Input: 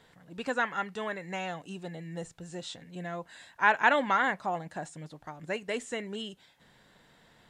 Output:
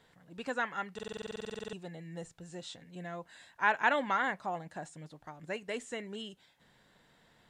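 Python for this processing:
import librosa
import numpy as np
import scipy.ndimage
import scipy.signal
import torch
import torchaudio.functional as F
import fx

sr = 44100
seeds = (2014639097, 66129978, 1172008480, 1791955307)

y = fx.buffer_glitch(x, sr, at_s=(0.94,), block=2048, repeats=16)
y = y * 10.0 ** (-4.5 / 20.0)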